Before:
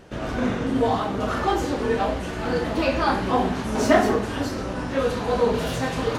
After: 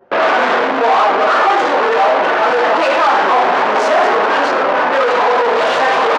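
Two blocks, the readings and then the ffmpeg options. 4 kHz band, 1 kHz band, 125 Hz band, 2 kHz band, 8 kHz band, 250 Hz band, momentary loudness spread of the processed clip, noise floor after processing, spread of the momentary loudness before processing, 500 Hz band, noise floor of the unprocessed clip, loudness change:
+11.0 dB, +15.0 dB, under -10 dB, +15.0 dB, n/a, -1.0 dB, 2 LU, -15 dBFS, 8 LU, +10.0 dB, -30 dBFS, +11.0 dB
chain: -filter_complex "[0:a]anlmdn=25.1,acontrast=79,asplit=2[a][b];[b]highpass=f=720:p=1,volume=36dB,asoftclip=type=tanh:threshold=-1.5dB[c];[a][c]amix=inputs=2:normalize=0,lowpass=f=1.3k:p=1,volume=-6dB,aeval=exprs='val(0)+0.0112*(sin(2*PI*50*n/s)+sin(2*PI*2*50*n/s)/2+sin(2*PI*3*50*n/s)/3+sin(2*PI*4*50*n/s)/4+sin(2*PI*5*50*n/s)/5)':c=same,asoftclip=type=tanh:threshold=-7dB,highpass=630,lowpass=6.7k,asplit=2[d][e];[e]aecho=0:1:104:0.224[f];[d][f]amix=inputs=2:normalize=0,adynamicequalizer=threshold=0.0447:dfrequency=1600:dqfactor=0.7:tfrequency=1600:tqfactor=0.7:attack=5:release=100:ratio=0.375:range=2.5:mode=cutabove:tftype=highshelf,volume=3dB"

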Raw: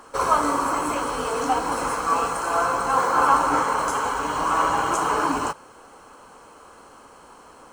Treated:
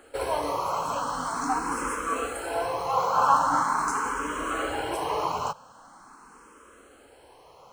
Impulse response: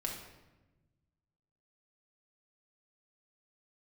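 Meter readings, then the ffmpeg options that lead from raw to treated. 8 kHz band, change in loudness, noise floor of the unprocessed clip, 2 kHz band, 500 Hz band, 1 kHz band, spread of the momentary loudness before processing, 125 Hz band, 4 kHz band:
-5.0 dB, -5.0 dB, -48 dBFS, -5.5 dB, -4.0 dB, -4.5 dB, 7 LU, -4.0 dB, -4.0 dB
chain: -filter_complex "[0:a]asplit=2[a][b];[b]afreqshift=0.43[c];[a][c]amix=inputs=2:normalize=1,volume=-1.5dB"

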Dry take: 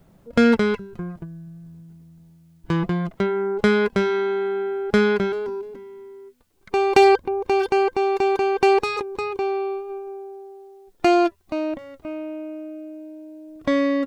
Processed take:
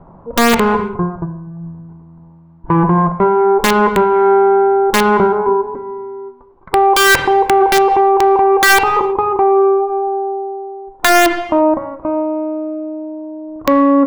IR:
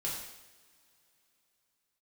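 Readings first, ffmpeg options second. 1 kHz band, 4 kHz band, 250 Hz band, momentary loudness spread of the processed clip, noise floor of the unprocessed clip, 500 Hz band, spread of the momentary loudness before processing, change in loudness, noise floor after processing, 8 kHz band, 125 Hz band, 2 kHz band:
+12.0 dB, +12.0 dB, +7.0 dB, 16 LU, -55 dBFS, +7.5 dB, 20 LU, +8.5 dB, -42 dBFS, n/a, +8.5 dB, +11.5 dB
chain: -filter_complex "[0:a]lowpass=f=1k:t=q:w=4.9,aeval=exprs='(mod(2.37*val(0)+1,2)-1)/2.37':c=same,acontrast=66,asplit=2[a][b];[1:a]atrim=start_sample=2205,afade=t=out:st=0.4:d=0.01,atrim=end_sample=18081,lowpass=2.3k[c];[b][c]afir=irnorm=-1:irlink=0,volume=-7.5dB[d];[a][d]amix=inputs=2:normalize=0,alimiter=level_in=5.5dB:limit=-1dB:release=50:level=0:latency=1,volume=-3dB"

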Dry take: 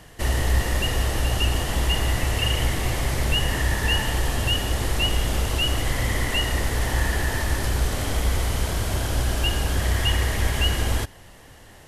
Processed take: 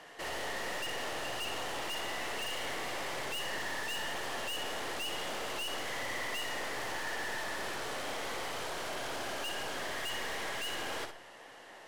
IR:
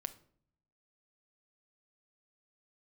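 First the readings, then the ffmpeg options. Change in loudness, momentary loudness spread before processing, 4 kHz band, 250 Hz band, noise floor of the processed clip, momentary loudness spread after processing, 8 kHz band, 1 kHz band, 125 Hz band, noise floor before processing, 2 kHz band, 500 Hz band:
-13.0 dB, 3 LU, -11.5 dB, -16.0 dB, -52 dBFS, 2 LU, -12.0 dB, -7.5 dB, -31.0 dB, -47 dBFS, -8.5 dB, -9.0 dB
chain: -filter_complex "[0:a]highpass=460,aemphasis=mode=reproduction:type=50fm,aeval=exprs='(tanh(70.8*val(0)+0.3)-tanh(0.3))/70.8':c=same,asplit=2[a][b];[1:a]atrim=start_sample=2205,asetrate=30870,aresample=44100,adelay=59[c];[b][c]afir=irnorm=-1:irlink=0,volume=-6.5dB[d];[a][d]amix=inputs=2:normalize=0"

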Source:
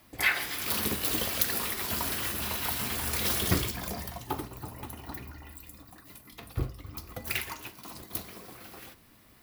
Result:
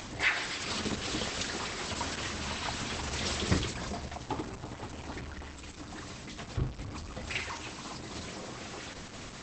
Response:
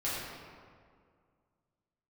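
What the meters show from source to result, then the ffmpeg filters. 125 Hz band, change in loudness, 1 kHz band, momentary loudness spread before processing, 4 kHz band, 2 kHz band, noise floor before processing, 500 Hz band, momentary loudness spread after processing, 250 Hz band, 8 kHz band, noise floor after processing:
0.0 dB, -5.5 dB, -0.5 dB, 20 LU, -1.0 dB, -1.5 dB, -58 dBFS, 0.0 dB, 12 LU, 0.0 dB, -4.5 dB, -46 dBFS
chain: -filter_complex "[0:a]aeval=exprs='val(0)+0.5*0.0211*sgn(val(0))':c=same,asplit=2[a][b];[1:a]atrim=start_sample=2205,lowshelf=f=350:g=6.5[c];[b][c]afir=irnorm=-1:irlink=0,volume=-26dB[d];[a][d]amix=inputs=2:normalize=0,acompressor=mode=upward:threshold=-37dB:ratio=2.5,volume=-2.5dB" -ar 48000 -c:a libopus -b:a 12k

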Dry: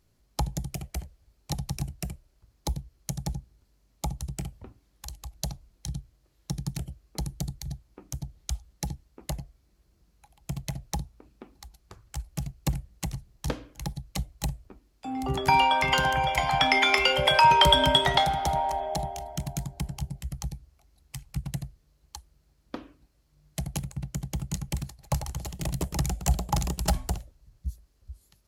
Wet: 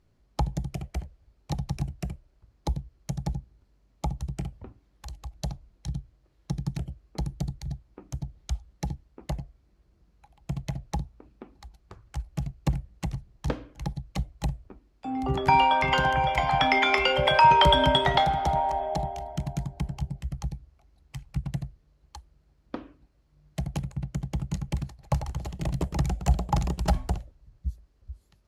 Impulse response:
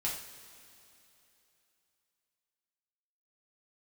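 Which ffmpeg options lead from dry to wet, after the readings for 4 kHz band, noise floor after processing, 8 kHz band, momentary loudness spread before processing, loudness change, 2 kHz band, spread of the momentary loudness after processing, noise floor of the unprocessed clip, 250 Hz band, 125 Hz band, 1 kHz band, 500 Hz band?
-3.5 dB, -66 dBFS, -9.0 dB, 21 LU, 0.0 dB, -0.5 dB, 18 LU, -68 dBFS, +2.0 dB, +2.0 dB, +1.5 dB, +1.5 dB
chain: -af "aemphasis=mode=reproduction:type=75kf,volume=2dB"

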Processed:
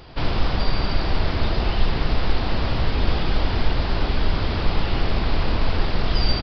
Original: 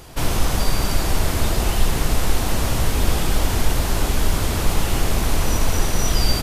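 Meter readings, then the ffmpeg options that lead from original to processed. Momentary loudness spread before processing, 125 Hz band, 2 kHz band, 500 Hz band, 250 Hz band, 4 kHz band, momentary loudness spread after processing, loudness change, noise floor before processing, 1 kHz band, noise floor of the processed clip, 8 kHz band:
1 LU, -1.5 dB, -1.5 dB, -1.5 dB, -1.5 dB, -2.0 dB, 1 LU, -2.5 dB, -23 dBFS, -1.5 dB, -25 dBFS, under -25 dB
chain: -af "aresample=11025,aresample=44100,volume=-1.5dB"

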